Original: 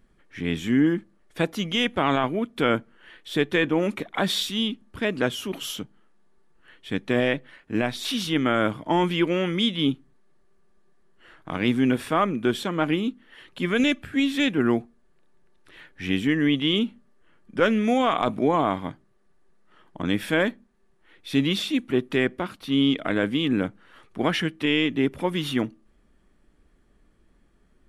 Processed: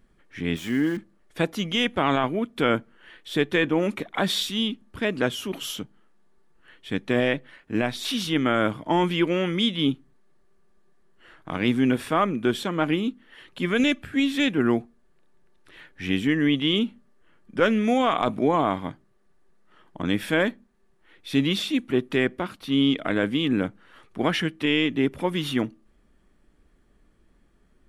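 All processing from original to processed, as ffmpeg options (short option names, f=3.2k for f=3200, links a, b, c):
-filter_complex "[0:a]asettb=1/sr,asplit=3[a][b][c];[a]atrim=end=0.564[d];[b]atrim=start=0.56:end=0.97,asetpts=PTS-STARTPTS,afade=t=in:d=0.004:c=qsin,afade=t=out:st=0.406:d=0.004:c=qsin,lowshelf=f=380:g=-6,aeval=exprs='val(0)*gte(abs(val(0)),0.0119)':c=same[e];[c]atrim=start=0.966[f];[d][e]acrossfade=d=0.004:c1=hsin:c2=qsin[g];[g][f]acrossfade=d=0.004:c1=qsin:c2=hsin"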